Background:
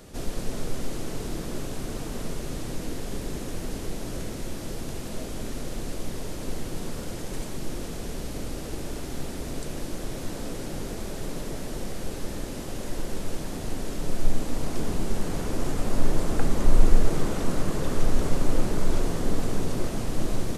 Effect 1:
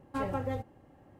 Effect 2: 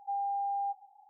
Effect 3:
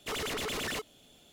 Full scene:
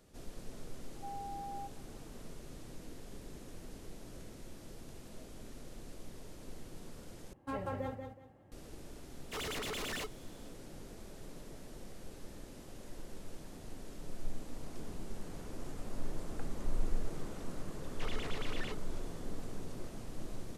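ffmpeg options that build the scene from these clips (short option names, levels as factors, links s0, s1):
-filter_complex "[3:a]asplit=2[s0][s1];[0:a]volume=0.15[s2];[1:a]aecho=1:1:186|372|558:0.501|0.125|0.0313[s3];[s1]lowpass=4200[s4];[s2]asplit=2[s5][s6];[s5]atrim=end=7.334[s7];[s3]atrim=end=1.19,asetpts=PTS-STARTPTS,volume=0.501[s8];[s6]atrim=start=8.516[s9];[2:a]atrim=end=1.09,asetpts=PTS-STARTPTS,volume=0.266,afade=t=in:d=0.004:c=hsin,afade=t=out:st=1.086:d=0.004:c=hsin,adelay=950[s10];[s0]atrim=end=1.32,asetpts=PTS-STARTPTS,volume=0.562,afade=t=in:d=0.1,afade=t=out:st=1.22:d=0.1,adelay=9250[s11];[s4]atrim=end=1.32,asetpts=PTS-STARTPTS,volume=0.398,afade=t=in:d=0.004:c=hsin,afade=t=out:st=1.316:d=0.004:c=hsin,adelay=17930[s12];[s7][s8]acrossfade=d=0.004:c1=hsin:c2=hsin[s13];[s13][s9]acrossfade=d=0.004:c1=hsin:c2=hsin[s14];[s14][s10][s11][s12]amix=inputs=4:normalize=0"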